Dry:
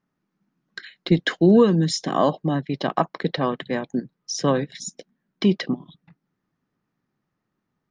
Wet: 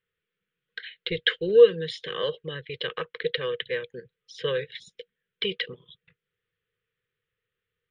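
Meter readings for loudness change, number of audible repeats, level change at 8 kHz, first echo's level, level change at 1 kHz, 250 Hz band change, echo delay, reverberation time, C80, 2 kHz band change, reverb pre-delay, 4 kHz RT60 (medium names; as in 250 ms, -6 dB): -4.0 dB, no echo, under -20 dB, no echo, -15.5 dB, -19.5 dB, no echo, no reverb, no reverb, 0.0 dB, no reverb, no reverb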